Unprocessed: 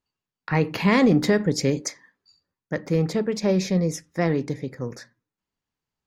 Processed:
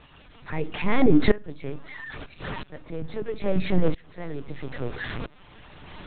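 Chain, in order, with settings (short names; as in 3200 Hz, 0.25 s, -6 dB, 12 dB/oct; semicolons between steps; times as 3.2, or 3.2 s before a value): zero-crossing step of -25 dBFS; reverb removal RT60 0.72 s; LPC vocoder at 8 kHz pitch kept; shoebox room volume 2500 m³, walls furnished, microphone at 0.42 m; dB-ramp tremolo swelling 0.76 Hz, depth 22 dB; gain +3.5 dB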